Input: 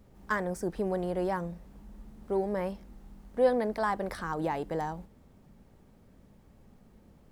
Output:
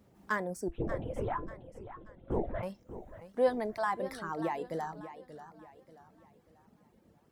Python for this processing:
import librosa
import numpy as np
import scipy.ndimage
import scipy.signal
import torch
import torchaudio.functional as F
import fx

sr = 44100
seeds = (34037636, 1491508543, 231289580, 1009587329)

y = scipy.signal.sosfilt(scipy.signal.butter(2, 96.0, 'highpass', fs=sr, output='sos'), x)
y = fx.lpc_vocoder(y, sr, seeds[0], excitation='whisper', order=8, at=(0.68, 2.63))
y = fx.dereverb_blind(y, sr, rt60_s=1.6)
y = fx.comb_fb(y, sr, f0_hz=340.0, decay_s=0.19, harmonics='all', damping=0.0, mix_pct=50)
y = fx.echo_warbled(y, sr, ms=586, feedback_pct=39, rate_hz=2.8, cents=121, wet_db=-13)
y = F.gain(torch.from_numpy(y), 3.0).numpy()